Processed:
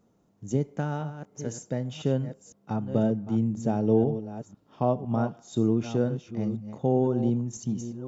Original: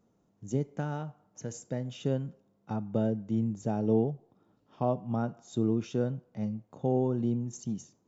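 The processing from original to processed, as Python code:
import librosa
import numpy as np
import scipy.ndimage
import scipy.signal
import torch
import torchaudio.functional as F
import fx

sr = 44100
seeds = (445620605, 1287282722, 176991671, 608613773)

y = fx.reverse_delay(x, sr, ms=505, wet_db=-11.0)
y = y * 10.0 ** (4.0 / 20.0)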